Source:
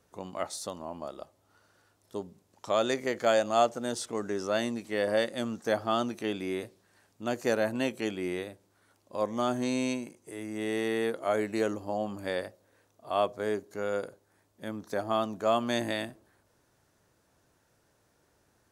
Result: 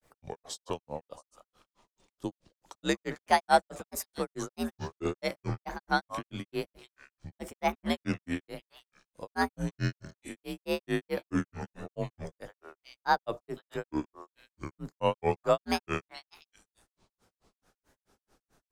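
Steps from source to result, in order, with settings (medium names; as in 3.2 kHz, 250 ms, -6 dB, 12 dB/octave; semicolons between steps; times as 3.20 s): repeats whose band climbs or falls 256 ms, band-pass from 1.1 kHz, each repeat 1.4 oct, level -8 dB; frequency shift -74 Hz; granulator 147 ms, grains 4.6 per s, pitch spread up and down by 7 st; trim +3.5 dB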